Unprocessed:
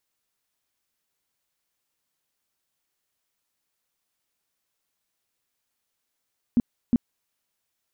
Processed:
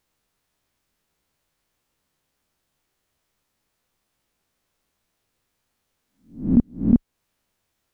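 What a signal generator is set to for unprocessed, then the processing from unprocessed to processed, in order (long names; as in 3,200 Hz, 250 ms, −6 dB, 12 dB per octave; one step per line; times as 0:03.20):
tone bursts 239 Hz, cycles 7, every 0.36 s, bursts 2, −14.5 dBFS
peak hold with a rise ahead of every peak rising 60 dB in 0.38 s
spectral tilt −2 dB per octave
in parallel at +2 dB: downward compressor, threshold −28 dBFS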